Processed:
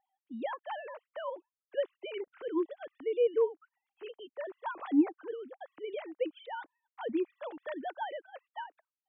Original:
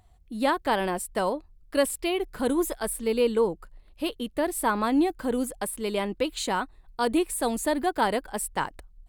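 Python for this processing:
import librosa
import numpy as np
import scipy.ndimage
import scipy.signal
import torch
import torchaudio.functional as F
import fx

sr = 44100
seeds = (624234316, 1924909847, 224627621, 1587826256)

y = fx.sine_speech(x, sr)
y = y * librosa.db_to_amplitude(-8.5)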